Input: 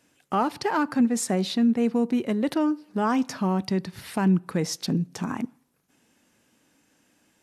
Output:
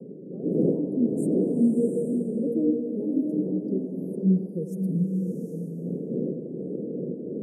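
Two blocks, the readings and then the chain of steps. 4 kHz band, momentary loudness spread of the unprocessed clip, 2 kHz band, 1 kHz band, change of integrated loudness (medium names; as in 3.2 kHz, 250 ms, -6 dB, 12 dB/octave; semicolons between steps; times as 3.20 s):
under -40 dB, 8 LU, under -40 dB, under -25 dB, -1.5 dB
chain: expander on every frequency bin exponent 2; wind noise 450 Hz -32 dBFS; Chebyshev high-pass 160 Hz, order 4; treble shelf 6.3 kHz -11.5 dB; in parallel at -1 dB: compression, threshold -32 dBFS, peak gain reduction 13.5 dB; on the sum: rotary cabinet horn 1 Hz; Chebyshev band-stop 490–8700 Hz, order 4; on a send: band-passed feedback delay 93 ms, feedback 82%, band-pass 900 Hz, level -8 dB; on the sum: swelling reverb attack 780 ms, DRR 1.5 dB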